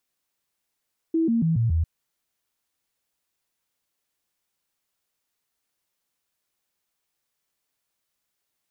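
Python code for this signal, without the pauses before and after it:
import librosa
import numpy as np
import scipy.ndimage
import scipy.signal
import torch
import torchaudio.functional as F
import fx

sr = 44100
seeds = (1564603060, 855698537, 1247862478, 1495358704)

y = fx.stepped_sweep(sr, from_hz=326.0, direction='down', per_octave=2, tones=5, dwell_s=0.14, gap_s=0.0, level_db=-18.5)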